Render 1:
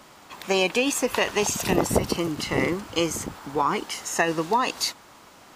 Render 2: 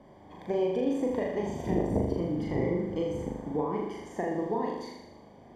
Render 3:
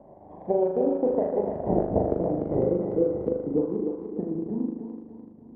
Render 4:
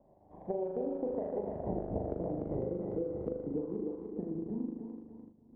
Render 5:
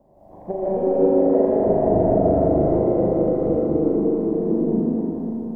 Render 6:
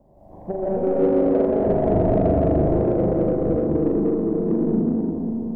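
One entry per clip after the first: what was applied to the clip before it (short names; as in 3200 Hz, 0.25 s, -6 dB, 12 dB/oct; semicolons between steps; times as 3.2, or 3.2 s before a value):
compressor 2:1, threshold -29 dBFS, peak gain reduction 8 dB; running mean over 33 samples; on a send: flutter echo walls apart 6.8 m, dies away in 0.92 s
low-pass sweep 690 Hz -> 250 Hz, 2.24–4.41; transient shaper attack +3 dB, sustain -9 dB; thinning echo 0.296 s, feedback 57%, high-pass 410 Hz, level -4 dB
gate -45 dBFS, range -7 dB; low shelf 94 Hz +8.5 dB; compressor, threshold -23 dBFS, peak gain reduction 7.5 dB; gain -8 dB
digital reverb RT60 3.4 s, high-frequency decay 0.95×, pre-delay 0.105 s, DRR -10 dB; gain +7.5 dB
low shelf 180 Hz +8.5 dB; in parallel at -6 dB: soft clip -18 dBFS, distortion -9 dB; on the sum: gain -5 dB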